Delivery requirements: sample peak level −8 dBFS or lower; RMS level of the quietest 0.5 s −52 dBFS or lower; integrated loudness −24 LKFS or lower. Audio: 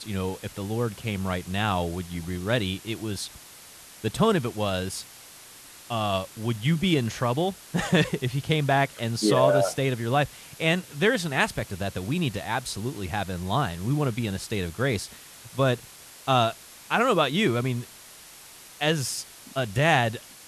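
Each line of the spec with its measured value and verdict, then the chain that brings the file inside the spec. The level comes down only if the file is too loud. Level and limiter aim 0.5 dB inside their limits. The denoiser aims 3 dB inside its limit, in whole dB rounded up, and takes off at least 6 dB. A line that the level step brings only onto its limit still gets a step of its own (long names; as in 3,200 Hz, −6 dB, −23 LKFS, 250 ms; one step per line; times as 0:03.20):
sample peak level −6.5 dBFS: out of spec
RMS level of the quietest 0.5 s −47 dBFS: out of spec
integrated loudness −26.5 LKFS: in spec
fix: broadband denoise 8 dB, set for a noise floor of −47 dBFS
brickwall limiter −8.5 dBFS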